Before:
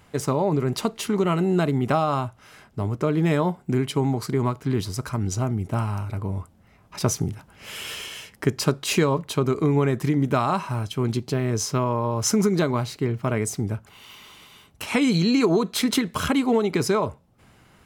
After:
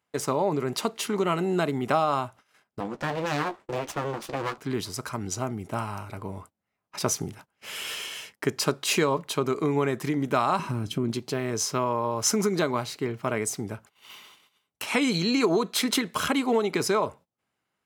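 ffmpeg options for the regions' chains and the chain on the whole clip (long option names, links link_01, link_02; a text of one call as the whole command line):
ffmpeg -i in.wav -filter_complex "[0:a]asettb=1/sr,asplit=3[link_01][link_02][link_03];[link_01]atrim=end=2.804[link_04];[link_02]atrim=start=2.8:end=4.58,asetpts=PTS-STARTPTS,afade=type=in:duration=0.004:curve=qsin,afade=type=out:start_time=1.776:duration=0.004:curve=qsin,lowpass=6000,aeval=exprs='abs(val(0))':channel_layout=same,asplit=2[link_05][link_06];[link_06]adelay=14,volume=-10.5dB[link_07];[link_05][link_07]amix=inputs=2:normalize=0,atrim=end_sample=78498[link_08];[link_03]atrim=start=4.576[link_09];[link_04][link_08]acrossfade=duration=0.004:curve1=hsin:curve2=qsin[link_10];[link_10][link_09]acrossfade=duration=0.004:curve1=qsin:curve2=hsin,asettb=1/sr,asplit=3[link_11][link_12][link_13];[link_11]atrim=end=10.594[link_14];[link_12]atrim=start=10.59:end=11.12,asetpts=PTS-STARTPTS,afade=type=in:duration=0.004:curve=qsin,afade=type=out:start_time=0.526:duration=0.004:curve=qsin,lowshelf=frequency=430:width_type=q:width=1.5:gain=11.5,acompressor=threshold=-16dB:ratio=6:attack=3.2:release=140:knee=1:detection=peak[link_15];[link_13]atrim=start=11.116[link_16];[link_14][link_15]acrossfade=duration=0.004:curve1=hsin:curve2=qsin[link_17];[link_17][link_16]acrossfade=duration=0.004:curve1=qsin:curve2=hsin,highpass=frequency=380:poles=1,agate=range=-23dB:threshold=-46dB:ratio=16:detection=peak" out.wav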